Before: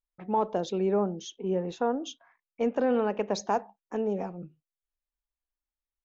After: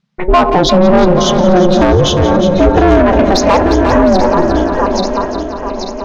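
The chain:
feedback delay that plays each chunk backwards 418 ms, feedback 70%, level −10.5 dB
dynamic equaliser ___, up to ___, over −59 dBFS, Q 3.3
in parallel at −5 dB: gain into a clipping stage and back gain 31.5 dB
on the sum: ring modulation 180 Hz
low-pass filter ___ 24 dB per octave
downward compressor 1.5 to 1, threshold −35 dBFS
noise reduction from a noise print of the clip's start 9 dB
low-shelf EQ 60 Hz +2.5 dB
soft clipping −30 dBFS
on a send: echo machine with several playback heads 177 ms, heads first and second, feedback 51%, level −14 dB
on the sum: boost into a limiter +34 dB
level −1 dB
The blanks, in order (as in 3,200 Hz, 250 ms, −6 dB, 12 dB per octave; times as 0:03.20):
3,000 Hz, −6 dB, 5,300 Hz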